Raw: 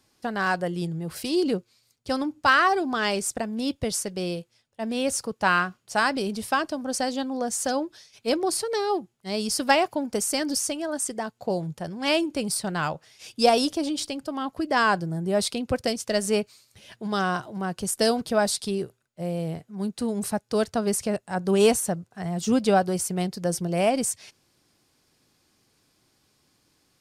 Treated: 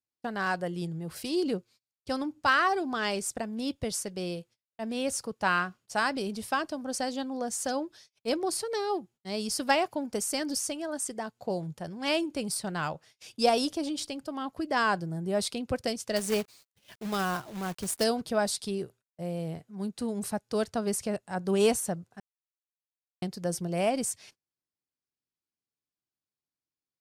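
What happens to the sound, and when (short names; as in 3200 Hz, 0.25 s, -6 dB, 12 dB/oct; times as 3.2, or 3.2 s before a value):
16.16–18.04 companded quantiser 4-bit
22.2–23.22 mute
whole clip: gate -49 dBFS, range -28 dB; gain -5 dB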